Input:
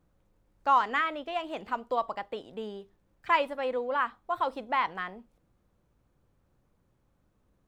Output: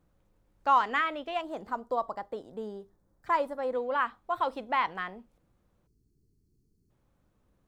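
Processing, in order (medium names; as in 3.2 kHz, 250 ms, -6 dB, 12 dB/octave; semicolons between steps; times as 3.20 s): 1.41–3.75 s: peaking EQ 2.7 kHz -15 dB 0.92 oct; 5.87–6.90 s: time-frequency box 460–4100 Hz -26 dB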